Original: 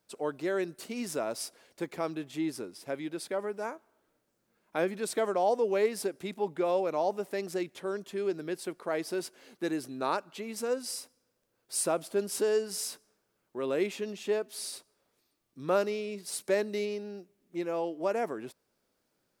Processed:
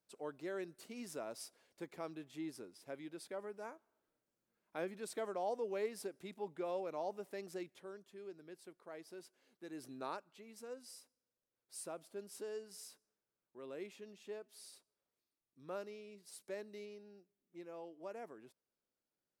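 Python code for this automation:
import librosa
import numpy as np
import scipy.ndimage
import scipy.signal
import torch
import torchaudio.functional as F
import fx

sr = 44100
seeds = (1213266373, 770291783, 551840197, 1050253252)

y = fx.gain(x, sr, db=fx.line((7.62, -12.0), (8.06, -19.0), (9.68, -19.0), (9.88, -9.0), (10.32, -17.5)))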